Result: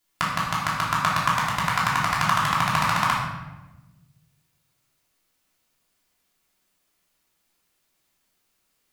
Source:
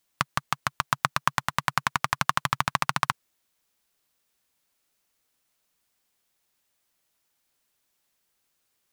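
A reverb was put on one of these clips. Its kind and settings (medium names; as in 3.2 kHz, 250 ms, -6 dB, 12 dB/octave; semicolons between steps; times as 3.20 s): simulated room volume 550 m³, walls mixed, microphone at 3.1 m; trim -3 dB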